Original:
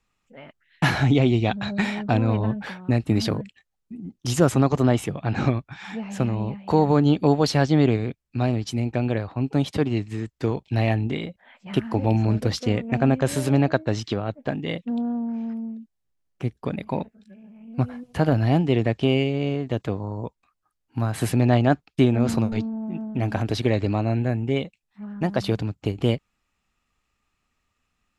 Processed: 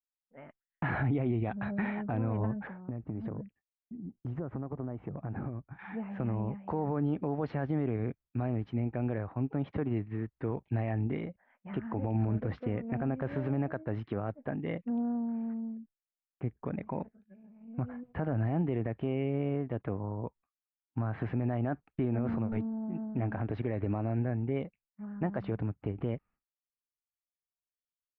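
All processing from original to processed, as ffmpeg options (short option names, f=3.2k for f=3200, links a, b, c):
-filter_complex "[0:a]asettb=1/sr,asplit=3[a][b][c];[a]atrim=end=2.674[d];[b]atrim=start=2.67:end=5.79,asetpts=PTS-STARTPTS,afade=t=in:d=0.004:c=qsin,afade=t=out:st=3.116:d=0.004:c=qsin,equalizer=f=3.8k:w=0.43:g=-14.5,acompressor=threshold=-26dB:ratio=12:attack=3.2:release=140:knee=1:detection=peak[e];[c]atrim=start=5.786[f];[d][e]acrossfade=d=0.004:c1=hsin:c2=qsin[g];[g][f]acrossfade=d=0.004:c1=qsin:c2=hsin,agate=range=-33dB:threshold=-43dB:ratio=3:detection=peak,lowpass=f=2k:w=0.5412,lowpass=f=2k:w=1.3066,alimiter=limit=-16dB:level=0:latency=1:release=63,volume=-6dB"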